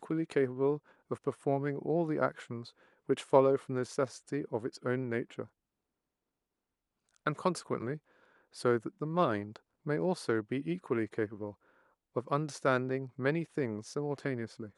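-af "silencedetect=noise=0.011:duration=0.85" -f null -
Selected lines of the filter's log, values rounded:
silence_start: 5.43
silence_end: 7.26 | silence_duration: 1.83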